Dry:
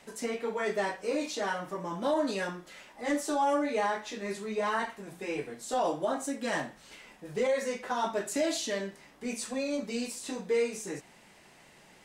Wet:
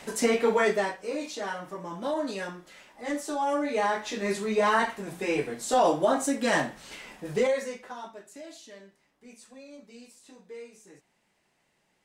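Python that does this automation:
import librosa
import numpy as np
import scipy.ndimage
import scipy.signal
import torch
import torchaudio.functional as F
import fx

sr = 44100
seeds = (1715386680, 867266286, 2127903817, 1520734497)

y = fx.gain(x, sr, db=fx.line((0.57, 10.0), (0.98, -1.5), (3.36, -1.5), (4.26, 7.0), (7.33, 7.0), (7.7, -3.0), (8.23, -15.0)))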